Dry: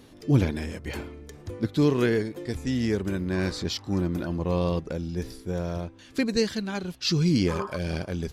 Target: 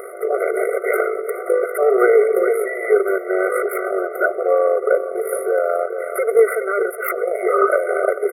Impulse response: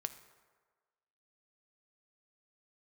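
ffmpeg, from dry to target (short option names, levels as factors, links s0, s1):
-filter_complex "[0:a]acrossover=split=390|2000[s0][s1][s2];[s1]crystalizer=i=9.5:c=0[s3];[s0][s3][s2]amix=inputs=3:normalize=0,equalizer=f=160:t=o:w=0.67:g=10,equalizer=f=2500:t=o:w=0.67:g=-5,equalizer=f=6300:t=o:w=0.67:g=5,tremolo=f=52:d=0.621,highpass=f=44:w=0.5412,highpass=f=44:w=1.3066,aecho=1:1:419|838|1257:0.126|0.0516|0.0212,asplit=2[s4][s5];[1:a]atrim=start_sample=2205[s6];[s5][s6]afir=irnorm=-1:irlink=0,volume=0.299[s7];[s4][s7]amix=inputs=2:normalize=0,asoftclip=type=tanh:threshold=0.178,asuperstop=centerf=4600:order=20:qfactor=0.64,bandreject=f=50:t=h:w=6,bandreject=f=100:t=h:w=6,bandreject=f=150:t=h:w=6,alimiter=level_in=18.8:limit=0.891:release=50:level=0:latency=1,afftfilt=real='re*eq(mod(floor(b*sr/1024/380),2),1)':imag='im*eq(mod(floor(b*sr/1024/380),2),1)':win_size=1024:overlap=0.75"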